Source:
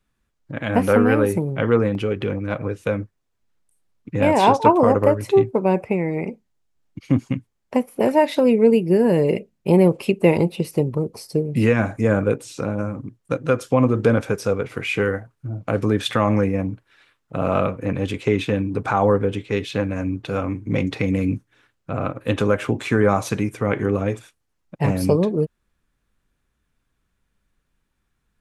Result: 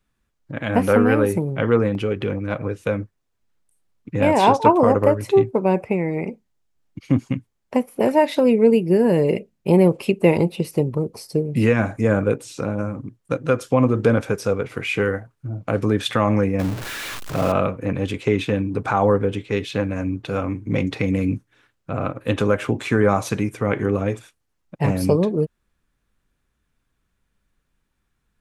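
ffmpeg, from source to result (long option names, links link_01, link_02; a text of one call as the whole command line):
ffmpeg -i in.wav -filter_complex "[0:a]asettb=1/sr,asplit=3[link_01][link_02][link_03];[link_01]atrim=end=16.594[link_04];[link_02]atrim=start=16.59:end=17.52,asetpts=PTS-STARTPTS,afade=type=in:duration=0.004:curve=qsin,afade=type=out:start_time=0.926:duration=0.004:curve=qsin,aeval=exprs='val(0)+0.5*0.0562*sgn(val(0))':channel_layout=same[link_05];[link_03]atrim=start=17.516[link_06];[link_04][link_05]acrossfade=duration=0.004:curve1=hsin:curve2=qsin[link_07];[link_07][link_06]acrossfade=duration=0.004:curve1=qsin:curve2=hsin" out.wav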